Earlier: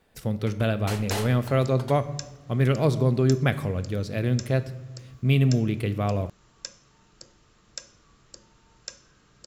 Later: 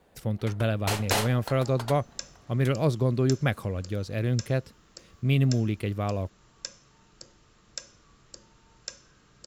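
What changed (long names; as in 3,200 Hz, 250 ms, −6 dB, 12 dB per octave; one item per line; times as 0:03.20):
first sound +8.5 dB
reverb: off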